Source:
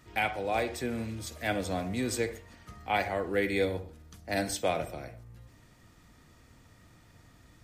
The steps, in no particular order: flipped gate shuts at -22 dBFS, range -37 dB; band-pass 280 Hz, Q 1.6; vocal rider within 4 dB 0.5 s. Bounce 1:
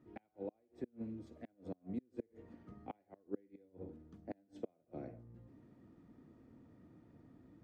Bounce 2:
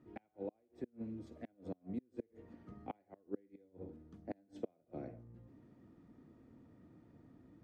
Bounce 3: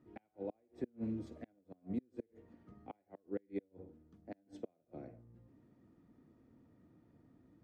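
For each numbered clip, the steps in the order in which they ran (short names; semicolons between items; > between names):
flipped gate > vocal rider > band-pass; flipped gate > band-pass > vocal rider; vocal rider > flipped gate > band-pass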